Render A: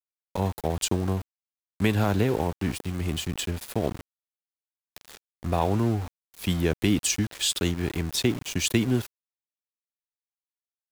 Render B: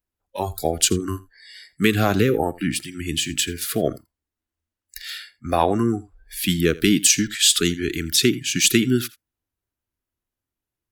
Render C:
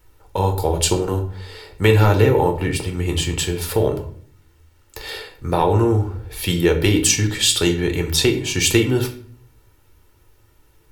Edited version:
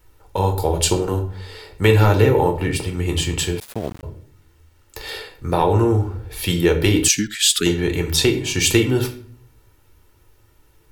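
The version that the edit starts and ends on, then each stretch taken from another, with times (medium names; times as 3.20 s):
C
3.60–4.03 s: from A
7.08–7.66 s: from B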